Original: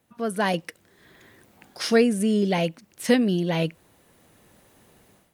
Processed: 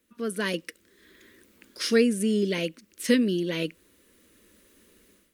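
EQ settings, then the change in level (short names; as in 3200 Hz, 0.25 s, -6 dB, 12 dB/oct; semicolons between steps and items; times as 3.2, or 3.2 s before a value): fixed phaser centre 320 Hz, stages 4; 0.0 dB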